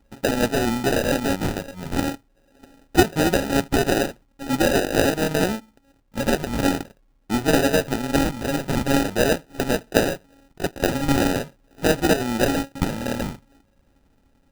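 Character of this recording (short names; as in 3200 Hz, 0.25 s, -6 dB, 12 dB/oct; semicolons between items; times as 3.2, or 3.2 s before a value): a buzz of ramps at a fixed pitch in blocks of 32 samples; phasing stages 12, 0.44 Hz, lowest notch 390–2700 Hz; aliases and images of a low sample rate 1100 Hz, jitter 0%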